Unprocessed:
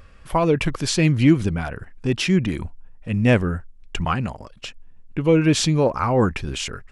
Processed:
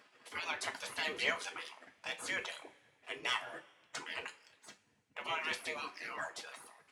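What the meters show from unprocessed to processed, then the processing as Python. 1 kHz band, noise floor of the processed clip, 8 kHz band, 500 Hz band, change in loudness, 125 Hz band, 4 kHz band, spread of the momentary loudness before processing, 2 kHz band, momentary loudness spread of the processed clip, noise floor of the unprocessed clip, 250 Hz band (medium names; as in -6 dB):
-15.5 dB, -73 dBFS, -17.0 dB, -24.5 dB, -18.5 dB, under -40 dB, -11.5 dB, 17 LU, -8.5 dB, 18 LU, -47 dBFS, -36.0 dB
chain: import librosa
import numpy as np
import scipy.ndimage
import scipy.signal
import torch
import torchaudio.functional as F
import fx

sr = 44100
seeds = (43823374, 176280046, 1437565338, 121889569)

y = fx.spec_gate(x, sr, threshold_db=-25, keep='weak')
y = fx.dereverb_blind(y, sr, rt60_s=0.53)
y = fx.leveller(y, sr, passes=1)
y = scipy.signal.sosfilt(scipy.signal.butter(2, 170.0, 'highpass', fs=sr, output='sos'), y)
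y = fx.high_shelf(y, sr, hz=6600.0, db=-7.0)
y = fx.rev_double_slope(y, sr, seeds[0], early_s=0.25, late_s=1.8, knee_db=-22, drr_db=3.5)
y = y * 10.0 ** (-4.0 / 20.0)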